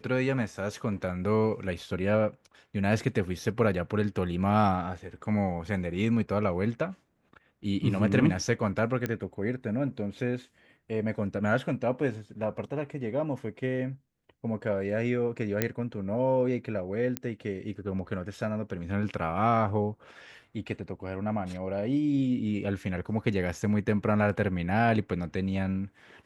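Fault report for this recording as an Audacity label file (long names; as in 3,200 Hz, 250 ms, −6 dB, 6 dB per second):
9.060000	9.060000	click −16 dBFS
15.620000	15.620000	click −10 dBFS
17.170000	17.170000	click −13 dBFS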